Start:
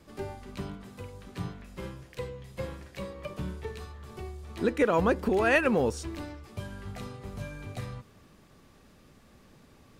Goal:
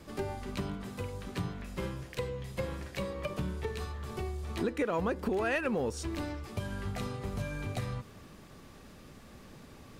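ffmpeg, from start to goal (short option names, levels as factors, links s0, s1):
-filter_complex "[0:a]asplit=2[s0][s1];[s1]asoftclip=type=hard:threshold=0.0531,volume=0.282[s2];[s0][s2]amix=inputs=2:normalize=0,acompressor=threshold=0.0178:ratio=3,volume=1.41"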